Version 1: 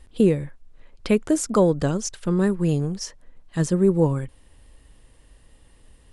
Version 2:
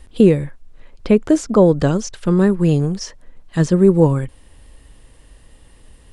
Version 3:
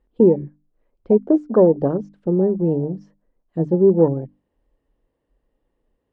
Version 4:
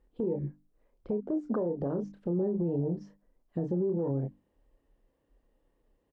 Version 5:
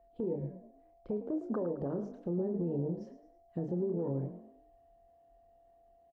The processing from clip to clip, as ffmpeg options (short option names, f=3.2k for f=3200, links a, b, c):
-filter_complex "[0:a]acrossover=split=6400[a][b];[b]acompressor=threshold=-53dB:ratio=4:attack=1:release=60[c];[a][c]amix=inputs=2:normalize=0,acrossover=split=960[d][e];[e]alimiter=level_in=1.5dB:limit=-24dB:level=0:latency=1:release=232,volume=-1.5dB[f];[d][f]amix=inputs=2:normalize=0,volume=6.5dB"
-af "afwtdn=0.0794,bandpass=f=420:t=q:w=0.82:csg=0,bandreject=f=50:t=h:w=6,bandreject=f=100:t=h:w=6,bandreject=f=150:t=h:w=6,bandreject=f=200:t=h:w=6,bandreject=f=250:t=h:w=6,bandreject=f=300:t=h:w=6"
-filter_complex "[0:a]asplit=2[a][b];[b]adelay=29,volume=-7dB[c];[a][c]amix=inputs=2:normalize=0,acompressor=threshold=-17dB:ratio=6,alimiter=limit=-21.5dB:level=0:latency=1:release=97,volume=-1.5dB"
-filter_complex "[0:a]aeval=exprs='val(0)+0.00126*sin(2*PI*680*n/s)':c=same,asplit=2[a][b];[b]asplit=4[c][d][e][f];[c]adelay=107,afreqshift=43,volume=-12dB[g];[d]adelay=214,afreqshift=86,volume=-20.2dB[h];[e]adelay=321,afreqshift=129,volume=-28.4dB[i];[f]adelay=428,afreqshift=172,volume=-36.5dB[j];[g][h][i][j]amix=inputs=4:normalize=0[k];[a][k]amix=inputs=2:normalize=0,volume=-4dB"